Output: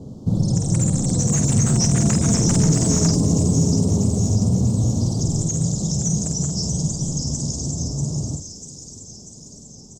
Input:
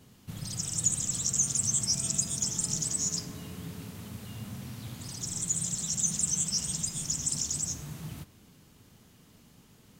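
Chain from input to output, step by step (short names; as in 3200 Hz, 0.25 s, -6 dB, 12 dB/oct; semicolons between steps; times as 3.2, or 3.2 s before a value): Doppler pass-by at 2.73, 18 m/s, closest 23 m; Chebyshev band-stop 560–7200 Hz, order 2; high shelf 8300 Hz -6 dB; in parallel at -2.5 dB: compressor, threshold -45 dBFS, peak gain reduction 17 dB; on the sum: overloaded stage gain 30.5 dB; air absorption 170 m; doubler 49 ms -7 dB; thin delay 0.642 s, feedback 63%, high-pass 4700 Hz, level -4.5 dB; maximiser +31.5 dB; gain -7.5 dB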